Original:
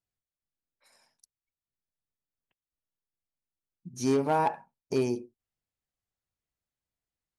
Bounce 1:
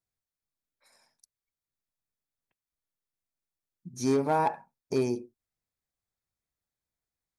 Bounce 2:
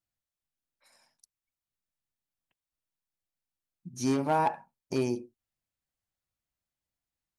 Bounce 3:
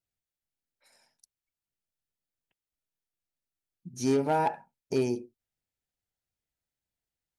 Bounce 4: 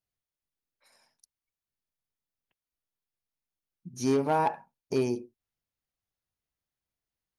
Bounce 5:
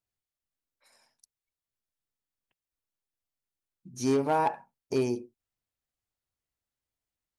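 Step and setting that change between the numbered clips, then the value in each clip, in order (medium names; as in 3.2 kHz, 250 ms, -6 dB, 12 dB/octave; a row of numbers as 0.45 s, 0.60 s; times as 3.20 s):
band-stop, frequency: 2.9 kHz, 430 Hz, 1.1 kHz, 7.7 kHz, 170 Hz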